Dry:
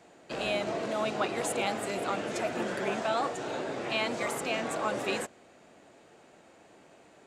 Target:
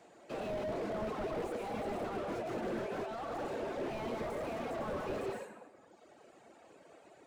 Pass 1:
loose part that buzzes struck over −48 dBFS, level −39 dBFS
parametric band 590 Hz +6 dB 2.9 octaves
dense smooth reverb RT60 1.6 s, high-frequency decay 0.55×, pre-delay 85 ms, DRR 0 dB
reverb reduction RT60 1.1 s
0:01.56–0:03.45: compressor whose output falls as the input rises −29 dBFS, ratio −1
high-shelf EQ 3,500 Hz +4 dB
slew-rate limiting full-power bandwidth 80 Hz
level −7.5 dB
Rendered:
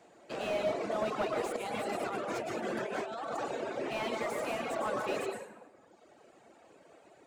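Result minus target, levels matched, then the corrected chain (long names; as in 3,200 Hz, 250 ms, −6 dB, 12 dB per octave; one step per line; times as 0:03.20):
slew-rate limiting: distortion −13 dB
loose part that buzzes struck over −48 dBFS, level −39 dBFS
parametric band 590 Hz +6 dB 2.9 octaves
dense smooth reverb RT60 1.6 s, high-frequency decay 0.55×, pre-delay 85 ms, DRR 0 dB
reverb reduction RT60 1.1 s
0:01.56–0:03.45: compressor whose output falls as the input rises −29 dBFS, ratio −1
high-shelf EQ 3,500 Hz +4 dB
slew-rate limiting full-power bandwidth 24 Hz
level −7.5 dB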